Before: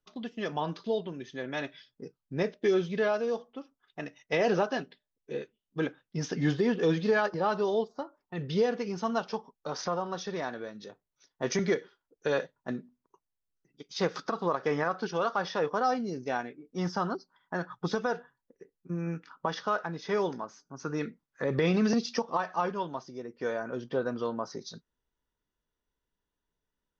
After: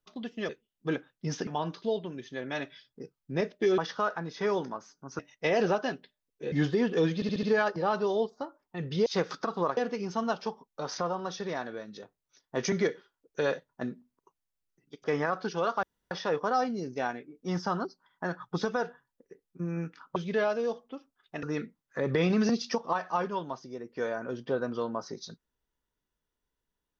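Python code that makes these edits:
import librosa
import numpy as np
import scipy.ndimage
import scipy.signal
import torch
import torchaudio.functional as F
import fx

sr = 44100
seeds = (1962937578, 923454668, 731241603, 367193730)

y = fx.edit(x, sr, fx.swap(start_s=2.8, length_s=1.27, other_s=19.46, other_length_s=1.41),
    fx.move(start_s=5.4, length_s=0.98, to_s=0.49),
    fx.stutter(start_s=7.01, slice_s=0.07, count=5),
    fx.move(start_s=13.91, length_s=0.71, to_s=8.64),
    fx.insert_room_tone(at_s=15.41, length_s=0.28), tone=tone)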